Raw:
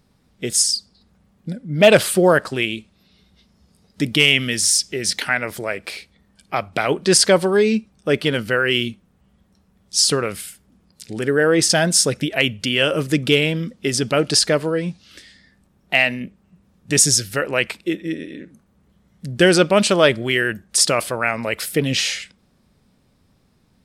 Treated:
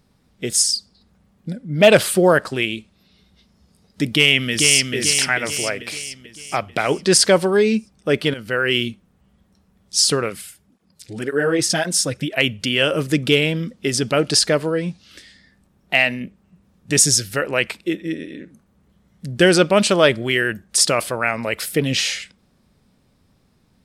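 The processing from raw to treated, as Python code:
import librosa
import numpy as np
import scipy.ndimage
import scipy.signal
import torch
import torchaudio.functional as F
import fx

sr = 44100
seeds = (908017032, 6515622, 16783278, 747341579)

y = fx.echo_throw(x, sr, start_s=4.1, length_s=0.84, ms=440, feedback_pct=50, wet_db=-3.5)
y = fx.flanger_cancel(y, sr, hz=1.9, depth_ms=5.5, at=(10.29, 12.36), fade=0.02)
y = fx.edit(y, sr, fx.fade_in_from(start_s=8.34, length_s=0.42, curve='qsin', floor_db=-14.5), tone=tone)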